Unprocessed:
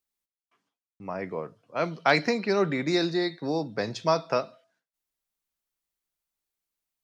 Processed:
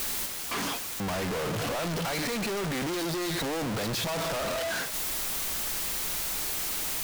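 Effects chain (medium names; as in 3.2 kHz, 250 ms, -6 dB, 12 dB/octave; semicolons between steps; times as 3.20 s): one-bit comparator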